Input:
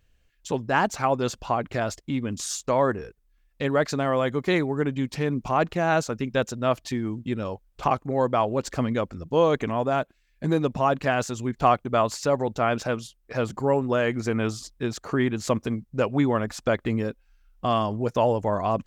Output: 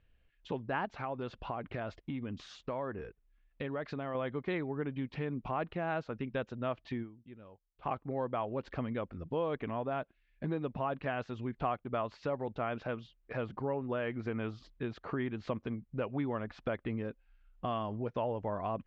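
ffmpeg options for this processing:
ffmpeg -i in.wav -filter_complex "[0:a]asettb=1/sr,asplit=3[link_01][link_02][link_03];[link_01]atrim=end=0.854[link_04];[link_02]atrim=start=0.85:end=4.15,asetpts=PTS-STARTPTS,afade=type=in:duration=0.004:curve=qsin,afade=type=out:start_time=3.296:duration=0.004:curve=qsin,acompressor=threshold=-28dB:ratio=2:attack=3.2:release=140:knee=1:detection=peak[link_05];[link_03]atrim=start=4.146[link_06];[link_04][link_05]acrossfade=duration=0.004:curve1=hsin:curve2=qsin[link_07];[link_07][link_06]acrossfade=duration=0.004:curve1=qsin:curve2=hsin,asplit=3[link_08][link_09][link_10];[link_08]atrim=end=7.32,asetpts=PTS-STARTPTS,afade=type=out:start_time=7.02:duration=0.3:curve=exp:silence=0.112202[link_11];[link_09]atrim=start=7.32:end=7.59,asetpts=PTS-STARTPTS,volume=-19dB[link_12];[link_10]atrim=start=7.59,asetpts=PTS-STARTPTS,afade=type=in:duration=0.3:curve=exp:silence=0.112202[link_13];[link_11][link_12][link_13]concat=n=3:v=0:a=1,lowpass=frequency=3300:width=0.5412,lowpass=frequency=3300:width=1.3066,acompressor=threshold=-33dB:ratio=2,volume=-4.5dB" out.wav

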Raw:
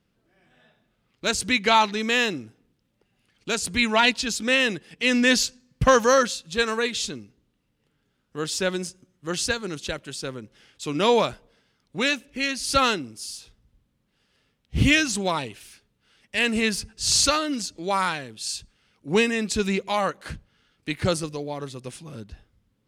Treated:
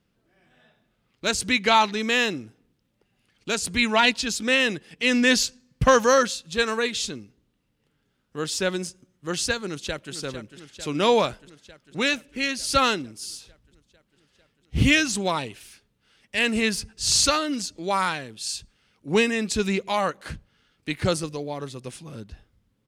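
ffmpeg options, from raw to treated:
ffmpeg -i in.wav -filter_complex "[0:a]asplit=2[link_01][link_02];[link_02]afade=type=in:start_time=9.66:duration=0.01,afade=type=out:start_time=10.14:duration=0.01,aecho=0:1:450|900|1350|1800|2250|2700|3150|3600|4050|4500|4950|5400:0.298538|0.223904|0.167928|0.125946|0.0944594|0.0708445|0.0531334|0.03985|0.0298875|0.0224157|0.0168117|0.0126088[link_03];[link_01][link_03]amix=inputs=2:normalize=0" out.wav

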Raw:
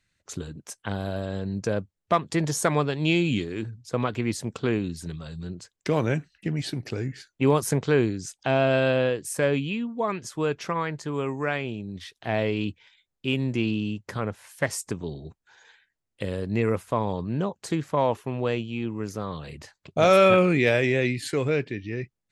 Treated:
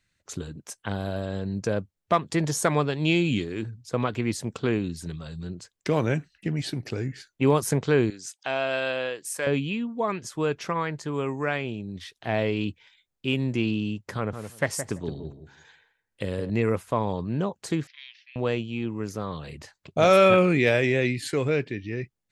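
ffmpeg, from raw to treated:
ffmpeg -i in.wav -filter_complex "[0:a]asettb=1/sr,asplit=3[link_01][link_02][link_03];[link_01]atrim=end=8.104[link_04];[link_02]atrim=start=8.1:end=9.47,asetpts=PTS-STARTPTS,afade=type=in:duration=0.004:curve=qsin,afade=type=out:start_time=1.366:duration=0.004:curve=qsin,highpass=frequency=990:poles=1[link_05];[link_03]atrim=start=9.466[link_06];[link_04][link_05]acrossfade=duration=0.004:curve1=hsin:curve2=qsin[link_07];[link_07][link_06]acrossfade=duration=0.004:curve1=qsin:curve2=hsin,asettb=1/sr,asplit=3[link_08][link_09][link_10];[link_08]atrim=end=14.164[link_11];[link_09]atrim=start=14.16:end=16.5,asetpts=PTS-STARTPTS,afade=type=in:duration=0.004:curve=qsin,afade=type=out:start_time=2.336:duration=0.004:curve=qsin,asplit=2[link_12][link_13];[link_13]adelay=168,lowpass=frequency=1100:poles=1,volume=-7.5dB,asplit=2[link_14][link_15];[link_15]adelay=168,lowpass=frequency=1100:poles=1,volume=0.18,asplit=2[link_16][link_17];[link_17]adelay=168,lowpass=frequency=1100:poles=1,volume=0.18[link_18];[link_12][link_14][link_16][link_18]amix=inputs=4:normalize=0,atrim=end_sample=103194[link_19];[link_10]atrim=start=16.496[link_20];[link_11][link_19]acrossfade=duration=0.004:curve1=hsin:curve2=qsin[link_21];[link_21][link_20]acrossfade=duration=0.004:curve1=qsin:curve2=hsin,asettb=1/sr,asplit=3[link_22][link_23][link_24];[link_22]atrim=end=17.874[link_25];[link_23]atrim=start=17.87:end=18.36,asetpts=PTS-STARTPTS,afade=type=in:duration=0.004:curve=qsin,afade=type=out:start_time=0.486:duration=0.004:curve=qsin,asuperpass=centerf=3200:order=12:qfactor=0.89[link_26];[link_24]atrim=start=18.356[link_27];[link_25][link_26]acrossfade=duration=0.004:curve1=hsin:curve2=qsin[link_28];[link_28][link_27]acrossfade=duration=0.004:curve1=qsin:curve2=hsin" out.wav

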